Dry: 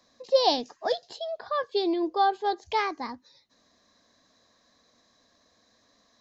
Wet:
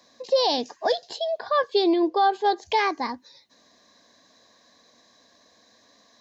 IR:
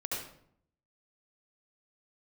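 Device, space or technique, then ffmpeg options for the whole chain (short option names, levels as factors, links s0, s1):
PA system with an anti-feedback notch: -filter_complex "[0:a]highpass=f=190:p=1,asuperstop=centerf=1300:order=4:qfactor=7.5,alimiter=limit=0.106:level=0:latency=1:release=70,asettb=1/sr,asplit=3[s0][s1][s2];[s0]atrim=end=1.844[s3];[s1]atrim=start=1.84:end=2.24,asetpts=PTS-STARTPTS,afade=t=in:d=0.004:c=qsin,afade=t=out:st=0.396:d=0.004:c=qsin,lowpass=5400[s4];[s2]atrim=start=2.236[s5];[s3][s4]acrossfade=d=0.004:c1=hsin:c2=qsin[s6];[s6][s5]acrossfade=d=0.004:c1=qsin:c2=hsin,volume=2.24"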